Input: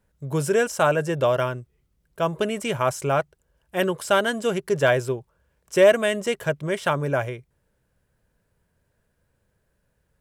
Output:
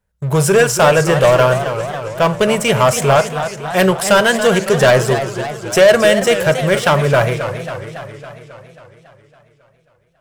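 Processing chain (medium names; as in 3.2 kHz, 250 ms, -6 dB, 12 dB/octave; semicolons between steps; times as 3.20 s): peaking EQ 290 Hz -12.5 dB 0.5 oct; waveshaping leveller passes 3; reverberation, pre-delay 8 ms, DRR 13 dB; modulated delay 274 ms, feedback 63%, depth 188 cents, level -10 dB; trim +2.5 dB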